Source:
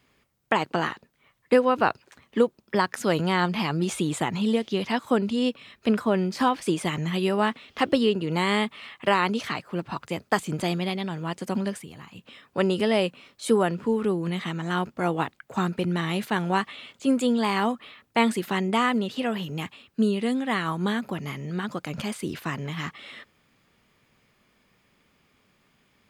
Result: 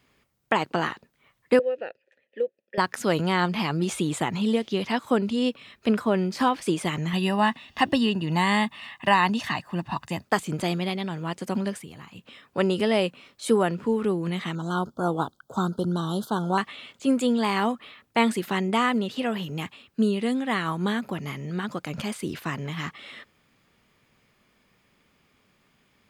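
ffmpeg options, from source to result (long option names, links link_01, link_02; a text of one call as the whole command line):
ffmpeg -i in.wav -filter_complex "[0:a]asettb=1/sr,asplit=3[link_01][link_02][link_03];[link_01]atrim=end=1.594[link_04];[link_02]atrim=start=1.59:end=2.78,asetpts=PTS-STARTPTS,afade=type=in:duration=0.004:curve=qsin,afade=type=out:start_time=1.186:duration=0.004:curve=qsin,asplit=3[link_05][link_06][link_07];[link_05]bandpass=frequency=530:width_type=q:width=8,volume=0dB[link_08];[link_06]bandpass=frequency=1840:width_type=q:width=8,volume=-6dB[link_09];[link_07]bandpass=frequency=2480:width_type=q:width=8,volume=-9dB[link_10];[link_08][link_09][link_10]amix=inputs=3:normalize=0[link_11];[link_03]atrim=start=2.776[link_12];[link_04][link_11]acrossfade=duration=0.004:curve1=hsin:curve2=qsin[link_13];[link_13][link_12]acrossfade=duration=0.004:curve1=qsin:curve2=hsin,asettb=1/sr,asplit=3[link_14][link_15][link_16];[link_14]atrim=end=7.134[link_17];[link_15]atrim=start=7.13:end=10.25,asetpts=PTS-STARTPTS,afade=type=in:duration=0.004:curve=qsin,afade=type=out:start_time=3.116:duration=0.004:curve=qsin,aecho=1:1:1.1:0.65,atrim=end_sample=137592[link_18];[link_16]atrim=start=10.246[link_19];[link_17][link_18]acrossfade=duration=0.004:curve1=hsin:curve2=qsin[link_20];[link_20][link_19]acrossfade=duration=0.004:curve1=qsin:curve2=hsin,asettb=1/sr,asplit=3[link_21][link_22][link_23];[link_21]atrim=end=14.554[link_24];[link_22]atrim=start=14.55:end=16.58,asetpts=PTS-STARTPTS,afade=type=in:duration=0.004:curve=qsin,afade=type=out:start_time=2.026:duration=0.004:curve=qsin,asuperstop=centerf=2200:order=12:qfactor=1.3[link_25];[link_23]atrim=start=16.576[link_26];[link_24][link_25]acrossfade=duration=0.004:curve1=hsin:curve2=qsin[link_27];[link_27][link_26]acrossfade=duration=0.004:curve1=qsin:curve2=hsin" out.wav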